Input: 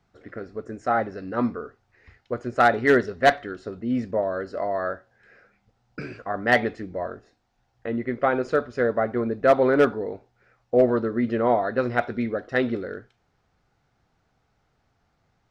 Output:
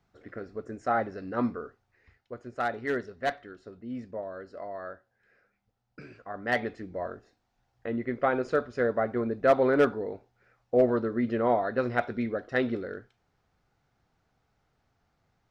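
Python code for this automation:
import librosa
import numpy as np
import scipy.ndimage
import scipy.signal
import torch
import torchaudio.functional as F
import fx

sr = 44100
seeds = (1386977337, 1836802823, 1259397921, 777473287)

y = fx.gain(x, sr, db=fx.line((1.64, -4.0), (2.32, -12.0), (6.06, -12.0), (7.07, -4.0)))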